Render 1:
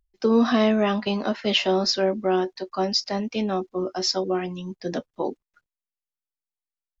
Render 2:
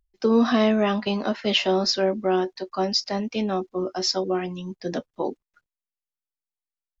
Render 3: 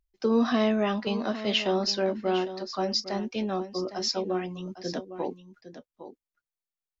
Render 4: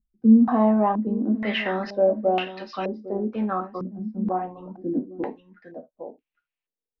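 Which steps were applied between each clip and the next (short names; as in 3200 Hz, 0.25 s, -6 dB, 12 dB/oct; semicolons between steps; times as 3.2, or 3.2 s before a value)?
nothing audible
echo 0.807 s -12.5 dB; gain -4.5 dB
on a send at -5 dB: reverb, pre-delay 3 ms; on the sum: stepped low-pass 2.1 Hz 210–2700 Hz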